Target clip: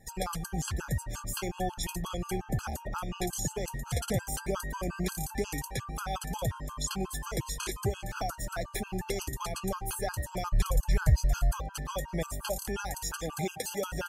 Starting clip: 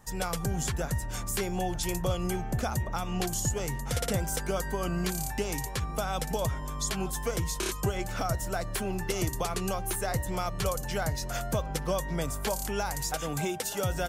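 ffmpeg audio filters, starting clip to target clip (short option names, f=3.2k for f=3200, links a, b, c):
-filter_complex "[0:a]asplit=3[a][b][c];[a]afade=t=out:st=10.5:d=0.02[d];[b]asubboost=boost=6:cutoff=100,afade=t=in:st=10.5:d=0.02,afade=t=out:st=11.5:d=0.02[e];[c]afade=t=in:st=11.5:d=0.02[f];[d][e][f]amix=inputs=3:normalize=0,afftfilt=real='re*gt(sin(2*PI*5.6*pts/sr)*(1-2*mod(floor(b*sr/1024/830),2)),0)':imag='im*gt(sin(2*PI*5.6*pts/sr)*(1-2*mod(floor(b*sr/1024/830),2)),0)':win_size=1024:overlap=0.75"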